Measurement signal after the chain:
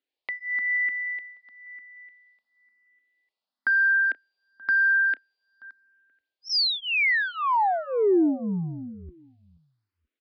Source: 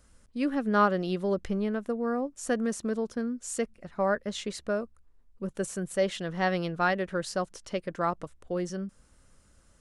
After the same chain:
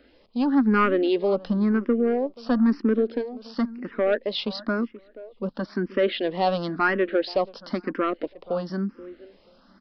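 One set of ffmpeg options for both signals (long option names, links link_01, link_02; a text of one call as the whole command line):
ffmpeg -i in.wav -filter_complex "[0:a]lowshelf=frequency=170:width_type=q:width=3:gain=-14,asplit=2[link_01][link_02];[link_02]acompressor=threshold=-34dB:ratio=6,volume=0dB[link_03];[link_01][link_03]amix=inputs=2:normalize=0,asoftclip=type=tanh:threshold=-16dB,asplit=2[link_04][link_05];[link_05]adelay=480,lowpass=frequency=2100:poles=1,volume=-19dB,asplit=2[link_06][link_07];[link_07]adelay=480,lowpass=frequency=2100:poles=1,volume=0.2[link_08];[link_04][link_06][link_08]amix=inputs=3:normalize=0,aresample=11025,aresample=44100,asplit=2[link_09][link_10];[link_10]afreqshift=0.98[link_11];[link_09][link_11]amix=inputs=2:normalize=1,volume=6dB" out.wav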